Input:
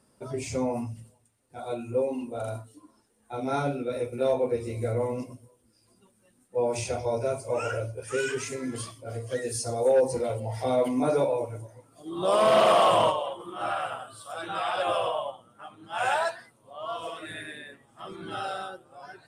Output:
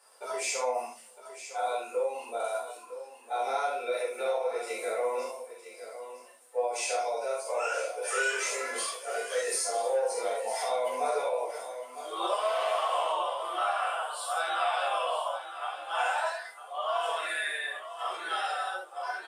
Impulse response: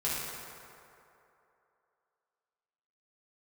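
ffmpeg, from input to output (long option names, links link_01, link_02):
-filter_complex "[0:a]highpass=frequency=590:width=0.5412,highpass=frequency=590:width=1.3066,alimiter=limit=-21.5dB:level=0:latency=1:release=26,acompressor=threshold=-37dB:ratio=5,aecho=1:1:957:0.251[link_01];[1:a]atrim=start_sample=2205,atrim=end_sample=3969[link_02];[link_01][link_02]afir=irnorm=-1:irlink=0,volume=5dB"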